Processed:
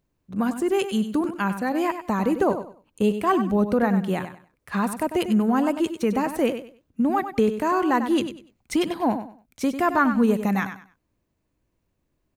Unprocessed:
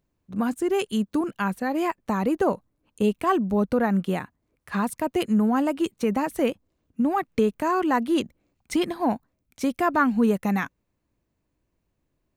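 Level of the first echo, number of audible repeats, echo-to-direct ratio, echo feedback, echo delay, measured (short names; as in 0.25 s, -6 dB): -10.0 dB, 3, -9.5 dB, 25%, 97 ms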